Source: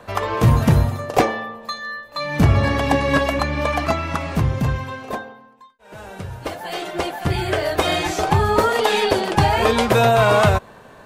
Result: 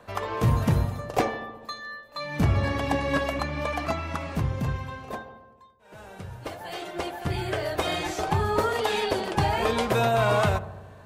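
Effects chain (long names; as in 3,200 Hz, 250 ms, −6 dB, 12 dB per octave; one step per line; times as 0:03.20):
feedback echo with a low-pass in the loop 74 ms, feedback 73%, low-pass 1,400 Hz, level −14 dB
level −8 dB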